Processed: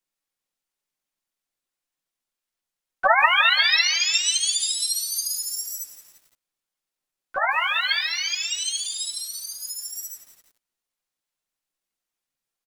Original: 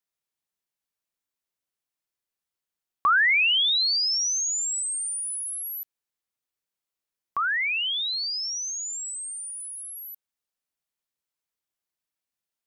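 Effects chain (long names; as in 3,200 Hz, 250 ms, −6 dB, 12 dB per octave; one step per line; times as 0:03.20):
multi-voice chorus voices 6, 0.16 Hz, delay 10 ms, depth 4.3 ms
comb filter 3.7 ms, depth 56%
pitch-shifted copies added −12 semitones −2 dB, −7 semitones −2 dB, +5 semitones −3 dB
feedback echo at a low word length 171 ms, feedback 55%, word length 7 bits, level −12 dB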